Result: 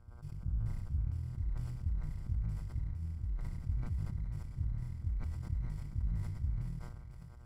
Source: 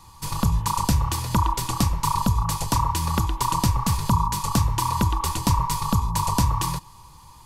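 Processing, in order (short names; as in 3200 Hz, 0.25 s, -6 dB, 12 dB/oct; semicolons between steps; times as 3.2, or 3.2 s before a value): minimum comb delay 0.39 ms; limiter -18 dBFS, peak gain reduction 8 dB; reverse; compressor 4:1, threshold -35 dBFS, peak gain reduction 11.5 dB; reverse; HPF 67 Hz 6 dB/oct; passive tone stack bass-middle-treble 10-0-1; harmonic-percussive split percussive -15 dB; on a send: thinning echo 0.495 s, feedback 57%, high-pass 380 Hz, level -3 dB; on the sum: transient shaper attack +10 dB, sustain -4 dB; tilt -2.5 dB/oct; buzz 120 Hz, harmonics 13, -72 dBFS -2 dB/oct; sustainer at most 29 dB/s; gain -1.5 dB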